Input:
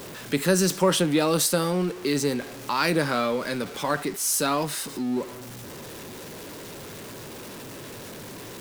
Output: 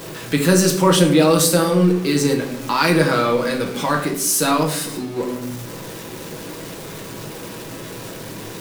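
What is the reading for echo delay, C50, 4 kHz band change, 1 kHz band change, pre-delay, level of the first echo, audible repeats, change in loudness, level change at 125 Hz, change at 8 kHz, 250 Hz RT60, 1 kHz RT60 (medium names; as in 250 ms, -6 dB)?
no echo, 9.0 dB, +6.0 dB, +7.0 dB, 6 ms, no echo, no echo, +7.0 dB, +9.5 dB, +6.0 dB, 1.0 s, 0.60 s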